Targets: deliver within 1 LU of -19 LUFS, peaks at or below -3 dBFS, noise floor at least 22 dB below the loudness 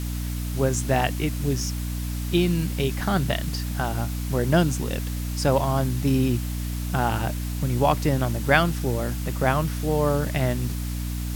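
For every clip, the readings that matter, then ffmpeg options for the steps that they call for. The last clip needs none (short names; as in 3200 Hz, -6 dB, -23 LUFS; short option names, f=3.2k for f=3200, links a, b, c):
hum 60 Hz; harmonics up to 300 Hz; hum level -26 dBFS; noise floor -29 dBFS; noise floor target -47 dBFS; loudness -24.5 LUFS; peak -4.0 dBFS; loudness target -19.0 LUFS
-> -af "bandreject=f=60:t=h:w=6,bandreject=f=120:t=h:w=6,bandreject=f=180:t=h:w=6,bandreject=f=240:t=h:w=6,bandreject=f=300:t=h:w=6"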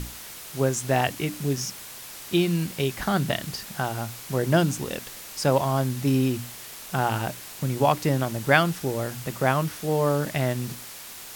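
hum none; noise floor -41 dBFS; noise floor target -48 dBFS
-> -af "afftdn=nr=7:nf=-41"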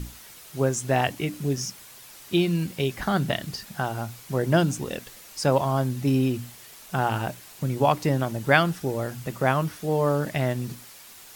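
noise floor -47 dBFS; noise floor target -48 dBFS
-> -af "afftdn=nr=6:nf=-47"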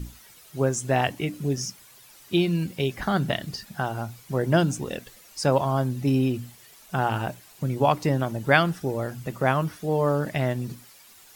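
noise floor -52 dBFS; loudness -25.5 LUFS; peak -4.5 dBFS; loudness target -19.0 LUFS
-> -af "volume=6.5dB,alimiter=limit=-3dB:level=0:latency=1"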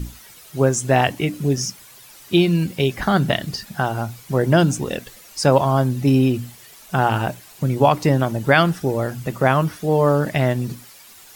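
loudness -19.5 LUFS; peak -3.0 dBFS; noise floor -45 dBFS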